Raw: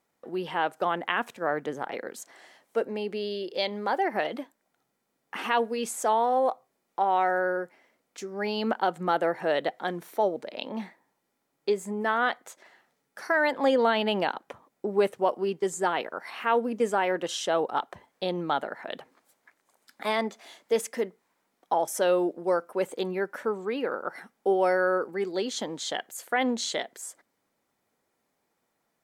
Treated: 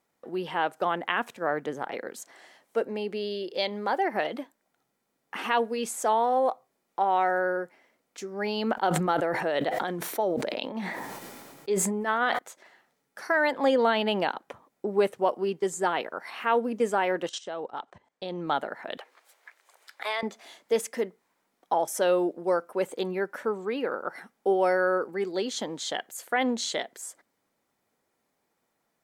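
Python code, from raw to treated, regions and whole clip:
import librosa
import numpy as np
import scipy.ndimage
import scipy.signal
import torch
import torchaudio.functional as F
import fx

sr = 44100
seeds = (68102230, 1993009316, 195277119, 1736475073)

y = fx.chain(x, sr, fx.tremolo(hz=8.3, depth=0.55),
    fx.sustainer(db_per_s=25.0), at=(8.73, 12.39))
y = fx.chain(y, sr, fx.steep_lowpass(hz=8900.0, slope=36),
    fx.level_steps(step_db=17), at=(17.29, 18.47))
y = fx.chain(y, sr, fx.highpass(hz=410.0, slope=24),
    fx.peak_eq(hz=2600.0, db=6.5, octaves=2.2),
    fx.band_squash(depth_pct=40), at=(18.97, 20.23))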